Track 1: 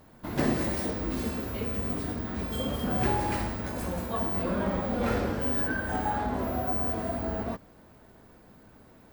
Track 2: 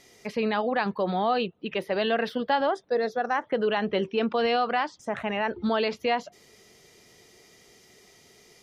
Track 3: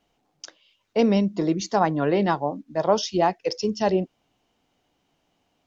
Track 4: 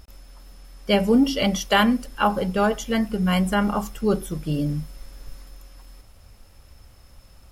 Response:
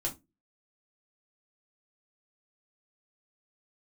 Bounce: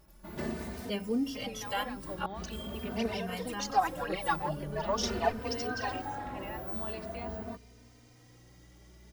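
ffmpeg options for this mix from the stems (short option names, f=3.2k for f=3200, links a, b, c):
-filter_complex "[0:a]volume=-6.5dB[a];[1:a]acompressor=threshold=-33dB:ratio=4,aeval=exprs='val(0)+0.00447*(sin(2*PI*60*n/s)+sin(2*PI*2*60*n/s)/2+sin(2*PI*3*60*n/s)/3+sin(2*PI*4*60*n/s)/4+sin(2*PI*5*60*n/s)/5)':c=same,adelay=1100,volume=-5.5dB[b];[2:a]highpass=760,aphaser=in_gain=1:out_gain=1:delay=3.3:decay=0.75:speed=1.9:type=triangular,adelay=2000,volume=-6dB[c];[3:a]highshelf=f=5.7k:g=7,volume=-13dB,asplit=3[d][e][f];[d]atrim=end=2.26,asetpts=PTS-STARTPTS,afade=t=out:st=2.256:d=0.004:c=hsin[g];[e]atrim=start=2.26:end=2.97,asetpts=PTS-STARTPTS,volume=0[h];[f]atrim=start=2.97,asetpts=PTS-STARTPTS,afade=t=in:d=0.004:c=hsin[i];[g][h][i]concat=n=3:v=0:a=1,asplit=2[j][k];[k]apad=whole_len=402585[l];[a][l]sidechaincompress=threshold=-45dB:ratio=8:attack=48:release=121[m];[m][b][c][j]amix=inputs=4:normalize=0,asplit=2[n][o];[o]adelay=3.1,afreqshift=0.45[p];[n][p]amix=inputs=2:normalize=1"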